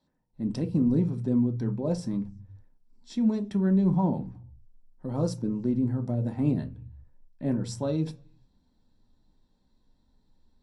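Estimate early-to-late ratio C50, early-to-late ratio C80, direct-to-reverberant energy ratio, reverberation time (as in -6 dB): 16.0 dB, 24.0 dB, 5.0 dB, no single decay rate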